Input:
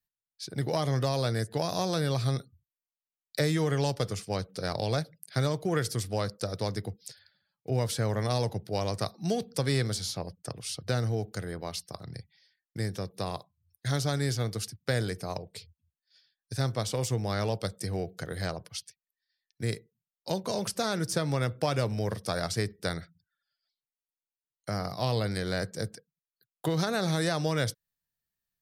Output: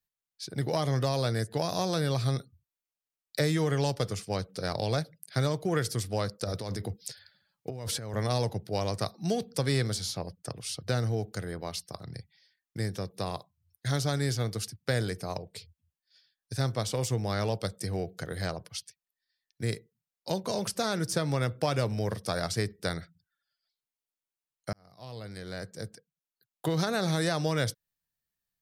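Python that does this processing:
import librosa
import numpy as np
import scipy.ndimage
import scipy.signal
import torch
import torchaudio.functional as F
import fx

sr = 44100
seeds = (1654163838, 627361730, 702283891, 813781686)

y = fx.over_compress(x, sr, threshold_db=-35.0, ratio=-1.0, at=(6.44, 8.14))
y = fx.edit(y, sr, fx.fade_in_span(start_s=24.73, length_s=2.03), tone=tone)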